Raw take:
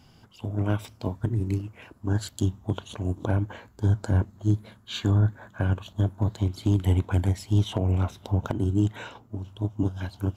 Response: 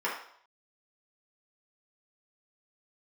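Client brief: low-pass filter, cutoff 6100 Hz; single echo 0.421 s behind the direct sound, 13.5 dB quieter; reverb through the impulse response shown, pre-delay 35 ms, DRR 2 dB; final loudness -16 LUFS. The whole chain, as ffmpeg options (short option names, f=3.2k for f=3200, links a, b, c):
-filter_complex "[0:a]lowpass=6.1k,aecho=1:1:421:0.211,asplit=2[a][b];[1:a]atrim=start_sample=2205,adelay=35[c];[b][c]afir=irnorm=-1:irlink=0,volume=-11.5dB[d];[a][d]amix=inputs=2:normalize=0,volume=11dB"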